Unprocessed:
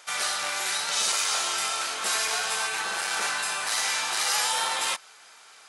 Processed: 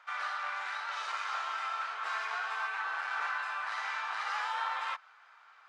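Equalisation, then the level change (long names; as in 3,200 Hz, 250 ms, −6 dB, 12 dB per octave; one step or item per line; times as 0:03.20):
high-pass with resonance 1,200 Hz, resonance Q 1.6
head-to-tape spacing loss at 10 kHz 31 dB
high-shelf EQ 2,200 Hz −9 dB
0.0 dB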